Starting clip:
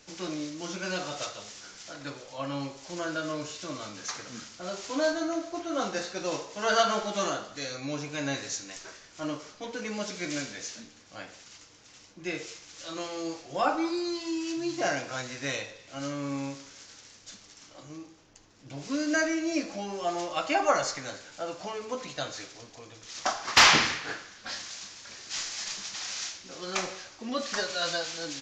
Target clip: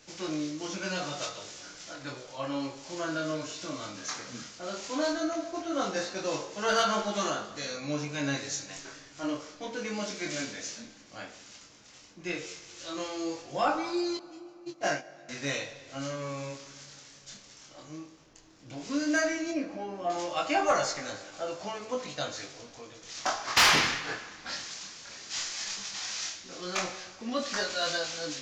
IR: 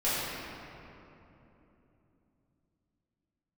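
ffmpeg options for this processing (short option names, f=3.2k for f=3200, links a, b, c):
-filter_complex "[0:a]asettb=1/sr,asplit=3[a][b][c];[a]atrim=end=14.174[d];[b]atrim=start=14.17:end=15.29,asetpts=PTS-STARTPTS,afade=t=in:d=0.004:c=qsin,afade=t=out:st=1.116:d=0.004:c=qsin,agate=range=-29dB:threshold=-28dB:ratio=16:detection=peak[e];[c]atrim=start=15.286[f];[d][e]acrossfade=d=0.004:c1=hsin:c2=qsin[g];[g][f]acrossfade=d=0.004:c1=qsin:c2=hsin,asettb=1/sr,asplit=3[h][i][j];[h]atrim=end=19.514[k];[i]atrim=start=19.51:end=20.1,asetpts=PTS-STARTPTS,afade=t=in:d=0.004:c=qsin,afade=t=out:st=0.586:d=0.004:c=qsin,lowpass=f=1.1k:p=1[l];[j]atrim=start=20.096[m];[k][l]acrossfade=d=0.004:c1=hsin:c2=qsin[n];[n][m]acrossfade=d=0.004:c1=qsin:c2=hsin,flanger=delay=19.5:depth=6.1:speed=0.14,asoftclip=type=tanh:threshold=-18.5dB,asplit=2[o][p];[1:a]atrim=start_sample=2205,adelay=114[q];[p][q]afir=irnorm=-1:irlink=0,volume=-30.5dB[r];[o][r]amix=inputs=2:normalize=0,volume=3dB"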